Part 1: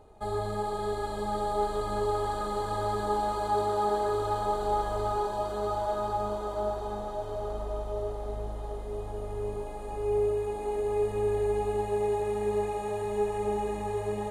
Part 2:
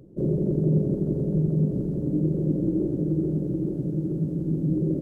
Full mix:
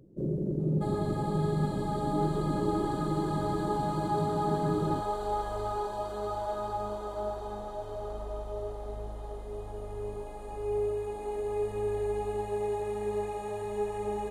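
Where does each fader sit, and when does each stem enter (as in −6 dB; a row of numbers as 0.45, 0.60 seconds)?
−3.5, −7.0 decibels; 0.60, 0.00 seconds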